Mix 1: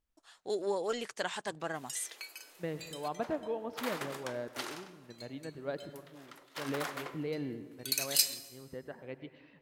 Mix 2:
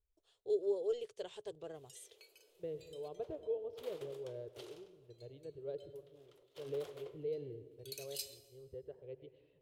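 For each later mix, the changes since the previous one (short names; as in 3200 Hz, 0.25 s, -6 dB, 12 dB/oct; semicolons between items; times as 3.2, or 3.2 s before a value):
master: add EQ curve 110 Hz 0 dB, 240 Hz -25 dB, 420 Hz +2 dB, 830 Hz -19 dB, 1800 Hz -25 dB, 3200 Hz -11 dB, 4900 Hz -17 dB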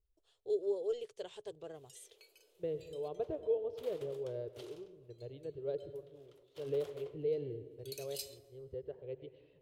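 second voice +5.0 dB; background: send -7.5 dB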